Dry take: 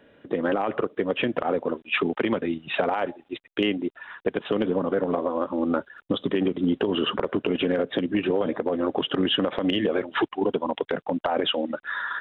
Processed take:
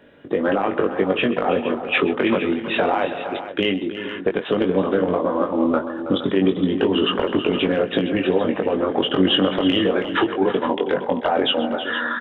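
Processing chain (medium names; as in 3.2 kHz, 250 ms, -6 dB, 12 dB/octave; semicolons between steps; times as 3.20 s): doubling 21 ms -4.5 dB; on a send: multi-tap echo 131/323/390/465 ms -17/-12/-19/-12 dB; on the sum: trim +3.5 dB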